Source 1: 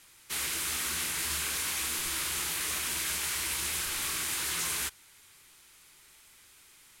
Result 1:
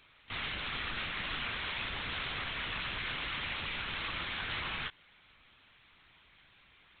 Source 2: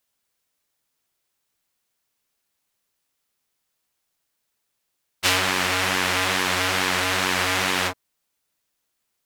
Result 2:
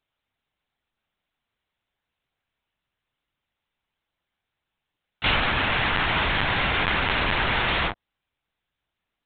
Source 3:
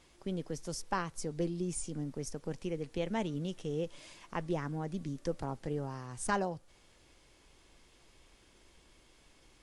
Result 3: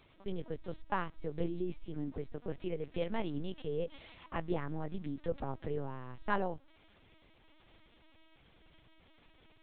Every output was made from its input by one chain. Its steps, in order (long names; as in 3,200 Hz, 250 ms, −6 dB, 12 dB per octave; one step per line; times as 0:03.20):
linear-prediction vocoder at 8 kHz pitch kept